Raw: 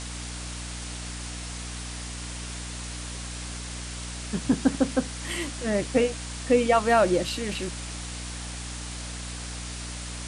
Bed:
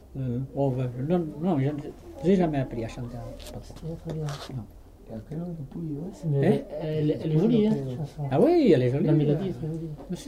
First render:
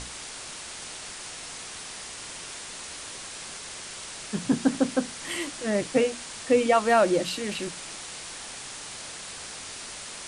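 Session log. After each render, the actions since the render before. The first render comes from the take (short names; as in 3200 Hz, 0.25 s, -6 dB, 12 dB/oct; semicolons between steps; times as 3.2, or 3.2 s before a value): notches 60/120/180/240/300 Hz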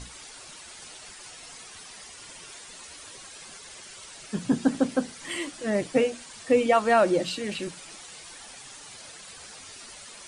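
denoiser 10 dB, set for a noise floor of -40 dBFS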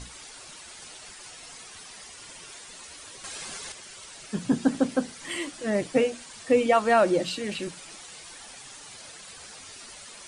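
3.24–3.72 gain +6.5 dB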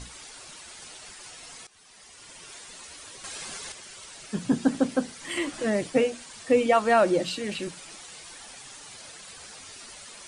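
1.67–2.56 fade in, from -17 dB; 5.37–5.9 three-band squash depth 70%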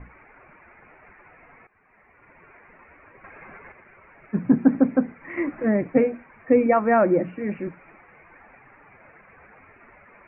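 steep low-pass 2400 Hz 96 dB/oct; dynamic EQ 220 Hz, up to +7 dB, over -38 dBFS, Q 0.77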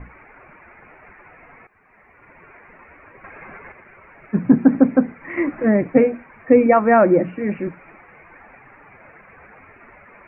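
gain +5 dB; limiter -1 dBFS, peak gain reduction 2 dB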